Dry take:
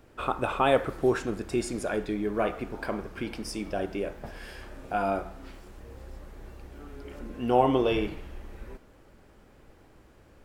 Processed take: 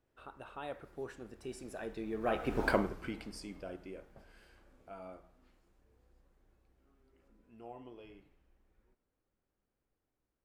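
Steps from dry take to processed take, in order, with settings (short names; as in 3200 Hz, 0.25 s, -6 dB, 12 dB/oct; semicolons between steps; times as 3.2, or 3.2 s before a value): Doppler pass-by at 2.65, 19 m/s, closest 2 m; gain +5.5 dB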